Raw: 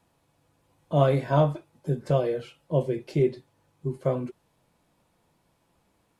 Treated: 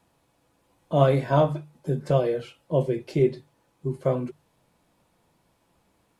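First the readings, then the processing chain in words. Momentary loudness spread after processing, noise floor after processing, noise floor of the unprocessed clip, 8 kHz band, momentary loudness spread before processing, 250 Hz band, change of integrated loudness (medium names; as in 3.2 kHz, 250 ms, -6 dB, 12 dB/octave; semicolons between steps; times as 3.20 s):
13 LU, -69 dBFS, -70 dBFS, no reading, 12 LU, +1.5 dB, +1.5 dB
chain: hum notches 50/100/150 Hz; trim +2 dB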